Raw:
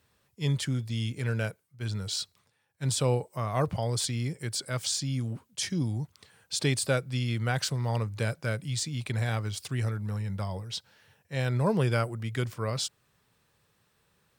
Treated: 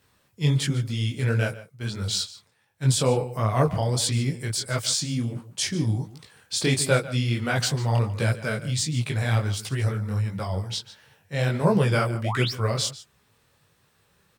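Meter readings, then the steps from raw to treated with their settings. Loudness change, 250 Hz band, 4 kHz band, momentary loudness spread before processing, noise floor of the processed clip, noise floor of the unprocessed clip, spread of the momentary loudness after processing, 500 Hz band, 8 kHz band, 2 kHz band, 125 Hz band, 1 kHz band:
+5.5 dB, +5.5 dB, +5.5 dB, 8 LU, −66 dBFS, −71 dBFS, 8 LU, +5.5 dB, +5.5 dB, +6.0 dB, +5.5 dB, +5.5 dB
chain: slap from a distant wall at 25 metres, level −15 dB
sound drawn into the spectrogram rise, 0:12.24–0:12.52, 510–6,000 Hz −35 dBFS
micro pitch shift up and down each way 50 cents
level +9 dB

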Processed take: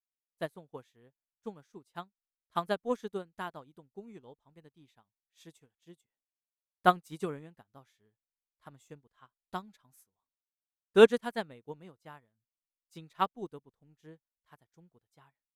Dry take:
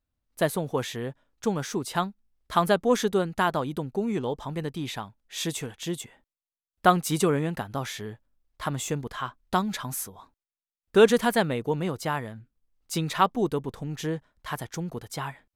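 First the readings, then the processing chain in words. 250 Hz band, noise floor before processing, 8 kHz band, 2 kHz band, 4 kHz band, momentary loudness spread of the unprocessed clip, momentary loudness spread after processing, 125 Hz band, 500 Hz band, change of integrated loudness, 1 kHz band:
−11.5 dB, below −85 dBFS, below −20 dB, −8.0 dB, −10.5 dB, 13 LU, 25 LU, −16.5 dB, −5.5 dB, −3.0 dB, −8.0 dB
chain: expander for the loud parts 2.5 to 1, over −39 dBFS

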